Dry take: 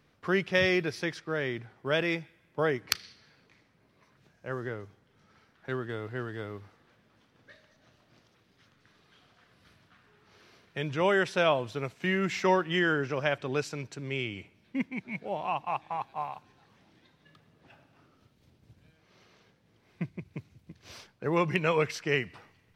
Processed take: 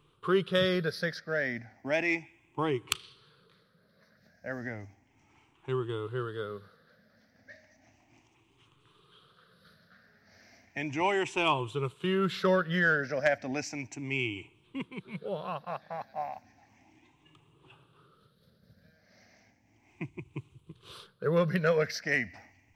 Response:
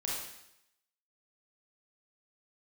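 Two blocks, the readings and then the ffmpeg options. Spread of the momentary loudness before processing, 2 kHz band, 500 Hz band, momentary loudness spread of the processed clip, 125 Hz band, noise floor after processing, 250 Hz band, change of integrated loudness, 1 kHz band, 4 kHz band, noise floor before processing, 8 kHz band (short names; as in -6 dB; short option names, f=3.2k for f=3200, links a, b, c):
16 LU, 0.0 dB, -0.5 dB, 17 LU, 0.0 dB, -67 dBFS, -1.0 dB, -0.5 dB, -2.0 dB, -1.0 dB, -67 dBFS, -0.5 dB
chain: -af "afftfilt=real='re*pow(10,16/40*sin(2*PI*(0.66*log(max(b,1)*sr/1024/100)/log(2)-(0.34)*(pts-256)/sr)))':imag='im*pow(10,16/40*sin(2*PI*(0.66*log(max(b,1)*sr/1024/100)/log(2)-(0.34)*(pts-256)/sr)))':win_size=1024:overlap=0.75,aeval=exprs='0.422*(cos(1*acos(clip(val(0)/0.422,-1,1)))-cos(1*PI/2))+0.0944*(cos(3*acos(clip(val(0)/0.422,-1,1)))-cos(3*PI/2))+0.0335*(cos(5*acos(clip(val(0)/0.422,-1,1)))-cos(5*PI/2))':c=same"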